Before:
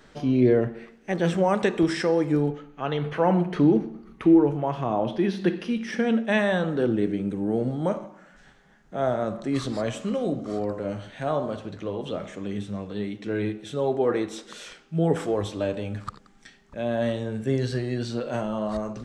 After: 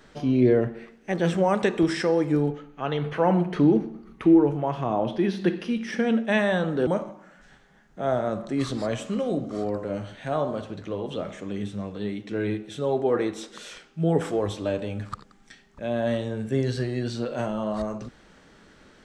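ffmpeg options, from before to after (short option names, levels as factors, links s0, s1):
-filter_complex "[0:a]asplit=2[s0][s1];[s0]atrim=end=6.872[s2];[s1]atrim=start=7.818[s3];[s2][s3]acrossfade=d=0.004:c1=hsin:c2=hsin"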